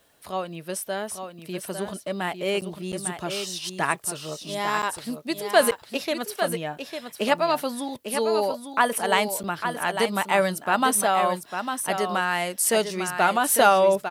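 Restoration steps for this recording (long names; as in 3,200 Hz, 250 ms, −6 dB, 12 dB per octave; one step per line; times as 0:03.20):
repair the gap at 0:02.61/0:02.92/0:04.82/0:05.71/0:09.43, 8.4 ms
echo removal 851 ms −7.5 dB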